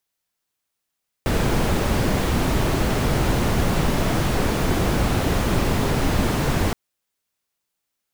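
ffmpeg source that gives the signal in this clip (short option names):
-f lavfi -i "anoisesrc=c=brown:a=0.495:d=5.47:r=44100:seed=1"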